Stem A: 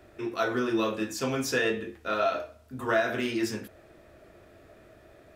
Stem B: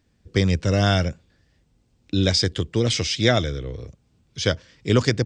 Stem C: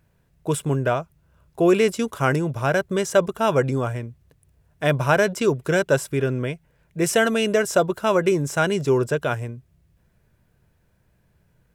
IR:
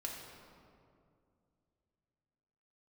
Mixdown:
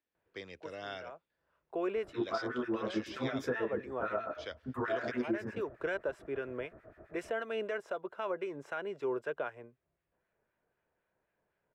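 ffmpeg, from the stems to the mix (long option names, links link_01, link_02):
-filter_complex "[0:a]highshelf=frequency=2400:width_type=q:width=1.5:gain=-10,acompressor=threshold=-29dB:ratio=6,acrossover=split=1400[link_01][link_02];[link_01]aeval=exprs='val(0)*(1-1/2+1/2*cos(2*PI*7.7*n/s))':channel_layout=same[link_03];[link_02]aeval=exprs='val(0)*(1-1/2-1/2*cos(2*PI*7.7*n/s))':channel_layout=same[link_04];[link_03][link_04]amix=inputs=2:normalize=0,adelay=1950,volume=2dB[link_05];[1:a]highshelf=frequency=2700:gain=11.5,volume=-19.5dB,asplit=2[link_06][link_07];[2:a]acrossover=split=1200[link_08][link_09];[link_08]aeval=exprs='val(0)*(1-0.5/2+0.5/2*cos(2*PI*3.9*n/s))':channel_layout=same[link_10];[link_09]aeval=exprs='val(0)*(1-0.5/2-0.5/2*cos(2*PI*3.9*n/s))':channel_layout=same[link_11];[link_10][link_11]amix=inputs=2:normalize=0,adelay=150,volume=-6dB[link_12];[link_07]apad=whole_len=524636[link_13];[link_12][link_13]sidechaincompress=threshold=-51dB:ratio=5:attack=6.9:release=401[link_14];[link_06][link_14]amix=inputs=2:normalize=0,acrossover=split=330 3400:gain=0.0794 1 0.158[link_15][link_16][link_17];[link_15][link_16][link_17]amix=inputs=3:normalize=0,alimiter=level_in=1.5dB:limit=-24dB:level=0:latency=1:release=403,volume=-1.5dB,volume=0dB[link_18];[link_05][link_18]amix=inputs=2:normalize=0,highshelf=frequency=3900:gain=-10.5"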